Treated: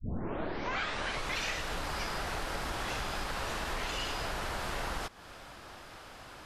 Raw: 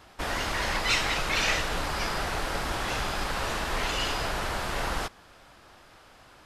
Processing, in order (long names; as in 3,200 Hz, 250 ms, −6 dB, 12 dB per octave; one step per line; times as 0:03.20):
turntable start at the beginning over 1.38 s
downward compressor 4 to 1, threshold −39 dBFS, peak gain reduction 15.5 dB
level +4.5 dB